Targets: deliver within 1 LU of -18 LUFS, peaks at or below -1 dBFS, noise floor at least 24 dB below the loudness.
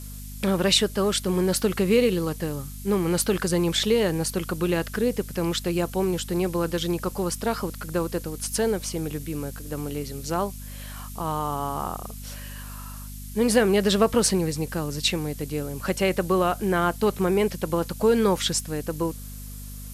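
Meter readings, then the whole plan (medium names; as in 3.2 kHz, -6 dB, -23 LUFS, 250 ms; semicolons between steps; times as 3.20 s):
hum 50 Hz; highest harmonic 250 Hz; hum level -36 dBFS; noise floor -38 dBFS; noise floor target -49 dBFS; loudness -25.0 LUFS; peak level -7.0 dBFS; loudness target -18.0 LUFS
-> de-hum 50 Hz, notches 5; noise reduction 11 dB, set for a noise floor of -38 dBFS; trim +7 dB; peak limiter -1 dBFS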